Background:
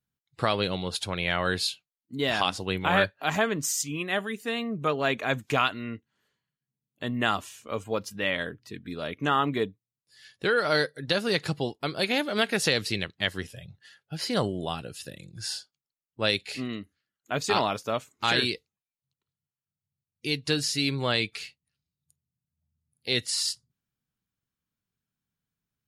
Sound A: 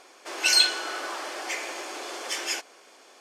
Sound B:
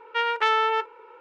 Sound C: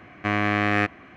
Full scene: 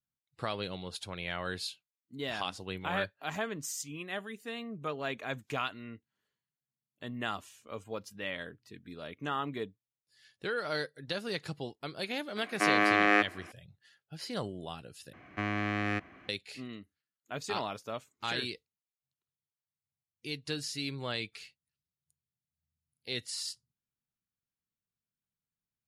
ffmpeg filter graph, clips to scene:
-filter_complex "[3:a]asplit=2[s0][s1];[0:a]volume=0.316[s2];[s0]highpass=f=270:w=0.5412,highpass=f=270:w=1.3066[s3];[s1]acrossover=split=350|2700[s4][s5][s6];[s5]acompressor=threshold=0.0355:ratio=2.5:attack=13:release=115:knee=2.83:detection=peak[s7];[s4][s7][s6]amix=inputs=3:normalize=0[s8];[s2]asplit=2[s9][s10];[s9]atrim=end=15.134[s11];[s8]atrim=end=1.16,asetpts=PTS-STARTPTS,volume=0.398[s12];[s10]atrim=start=16.286[s13];[s3]atrim=end=1.16,asetpts=PTS-STARTPTS,volume=0.841,afade=t=in:d=0.004:c=hsin,afade=t=out:st=1.156:d=0.004:c=hsin,adelay=545076S[s14];[s11][s12]acrossfade=d=0.004:c1=hsin:c2=hsin[s15];[s15][s13]acrossfade=d=0.004:c1=hsin:c2=hsin[s16];[s16][s14]amix=inputs=2:normalize=0"

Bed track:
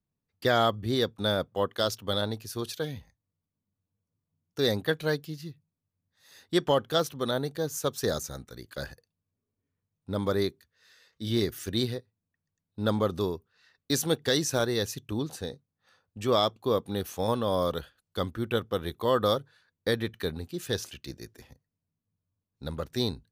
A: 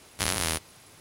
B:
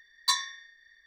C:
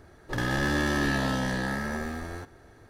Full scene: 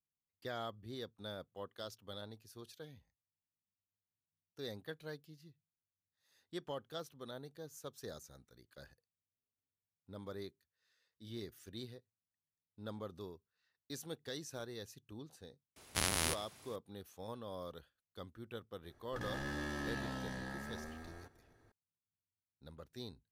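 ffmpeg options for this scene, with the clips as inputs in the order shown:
-filter_complex "[0:a]volume=0.112[s0];[1:a]asplit=2[s1][s2];[s2]adelay=105,volume=0.126,highshelf=f=4000:g=-2.36[s3];[s1][s3]amix=inputs=2:normalize=0,atrim=end=1,asetpts=PTS-STARTPTS,volume=0.473,afade=t=in:d=0.004:c=hsin,afade=t=out:st=0.996:d=0.004:c=hsin,adelay=15760[s4];[3:a]atrim=end=2.89,asetpts=PTS-STARTPTS,volume=0.178,afade=t=in:d=0.004:c=hsin,afade=t=out:st=2.886:d=0.004:c=hsin,adelay=18830[s5];[s0][s4][s5]amix=inputs=3:normalize=0"

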